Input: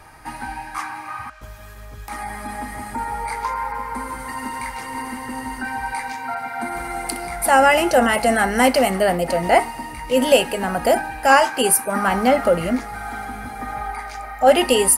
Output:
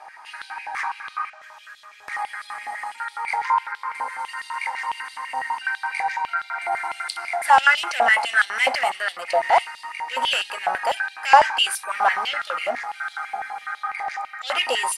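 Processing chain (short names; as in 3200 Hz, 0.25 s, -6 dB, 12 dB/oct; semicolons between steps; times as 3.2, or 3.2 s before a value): in parallel at -9 dB: wavefolder -18 dBFS; on the sum: LPF 7100 Hz 12 dB/oct; stepped high-pass 12 Hz 750–3600 Hz; gain -5.5 dB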